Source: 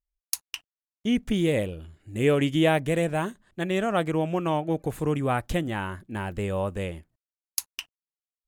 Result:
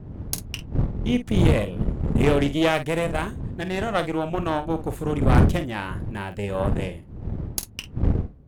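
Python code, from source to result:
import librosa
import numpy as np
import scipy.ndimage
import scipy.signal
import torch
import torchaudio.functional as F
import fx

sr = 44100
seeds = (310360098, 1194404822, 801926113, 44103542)

y = fx.dmg_wind(x, sr, seeds[0], corner_hz=140.0, level_db=-26.0)
y = fx.cheby_harmonics(y, sr, harmonics=(6,), levels_db=(-17,), full_scale_db=-6.5)
y = fx.room_early_taps(y, sr, ms=(28, 49), db=(-17.0, -11.5))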